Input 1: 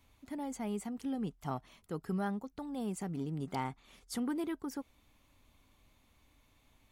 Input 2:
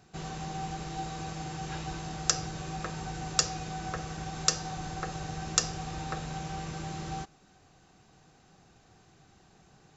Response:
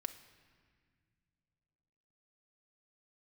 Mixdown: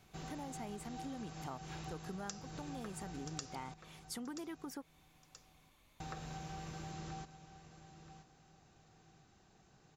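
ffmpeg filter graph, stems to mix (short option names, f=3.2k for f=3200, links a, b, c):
-filter_complex "[0:a]lowshelf=f=350:g=-6.5,volume=1.5dB[a];[1:a]volume=-7dB,asplit=3[b][c][d];[b]atrim=end=3.74,asetpts=PTS-STARTPTS,afade=t=out:st=3.736:d=0.004:c=hsin[e];[c]atrim=start=3.74:end=6,asetpts=PTS-STARTPTS,volume=0[f];[d]atrim=start=6,asetpts=PTS-STARTPTS,afade=t=in:d=0.004:c=hsin[g];[e][f][g]concat=n=3:v=0:a=1,asplit=2[h][i];[i]volume=-14dB,aecho=0:1:979|1958|2937|3916:1|0.24|0.0576|0.0138[j];[a][h][j]amix=inputs=3:normalize=0,acompressor=threshold=-42dB:ratio=5"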